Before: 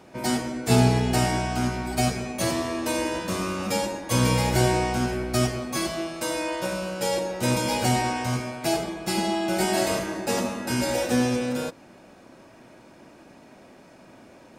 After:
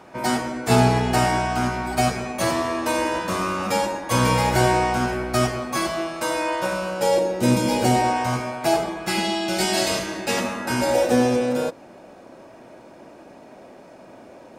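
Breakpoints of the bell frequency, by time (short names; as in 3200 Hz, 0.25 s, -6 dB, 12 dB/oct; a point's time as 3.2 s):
bell +8 dB 1.9 oct
6.87 s 1100 Hz
7.57 s 210 Hz
8.26 s 940 Hz
8.93 s 940 Hz
9.37 s 4200 Hz
10.09 s 4200 Hz
11.01 s 590 Hz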